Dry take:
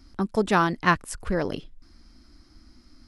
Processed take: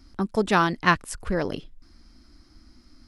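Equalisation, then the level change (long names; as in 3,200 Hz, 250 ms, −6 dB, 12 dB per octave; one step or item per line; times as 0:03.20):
dynamic equaliser 3,600 Hz, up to +4 dB, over −36 dBFS, Q 0.77
0.0 dB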